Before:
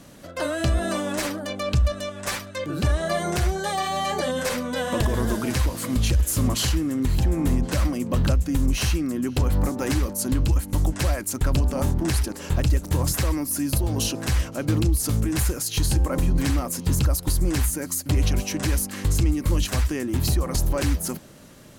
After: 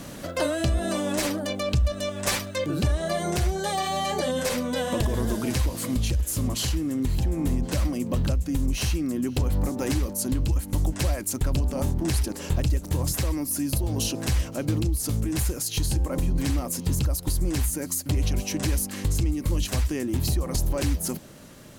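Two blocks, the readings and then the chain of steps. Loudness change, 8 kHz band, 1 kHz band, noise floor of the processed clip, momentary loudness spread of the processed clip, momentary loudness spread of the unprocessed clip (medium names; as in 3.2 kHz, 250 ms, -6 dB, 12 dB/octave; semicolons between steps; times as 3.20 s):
-2.5 dB, -1.5 dB, -2.5 dB, -39 dBFS, 2 LU, 4 LU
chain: compression 1.5:1, threshold -24 dBFS, peak gain reduction 3.5 dB; dynamic bell 1.4 kHz, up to -5 dB, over -45 dBFS, Q 1.2; bit crusher 11-bit; gain riding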